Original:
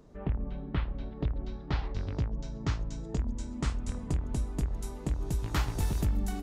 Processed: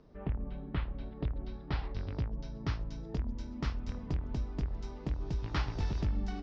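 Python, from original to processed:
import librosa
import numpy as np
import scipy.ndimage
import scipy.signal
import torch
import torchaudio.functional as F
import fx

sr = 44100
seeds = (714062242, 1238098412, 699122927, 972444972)

y = scipy.signal.sosfilt(scipy.signal.ellip(4, 1.0, 60, 5400.0, 'lowpass', fs=sr, output='sos'), x)
y = F.gain(torch.from_numpy(y), -2.5).numpy()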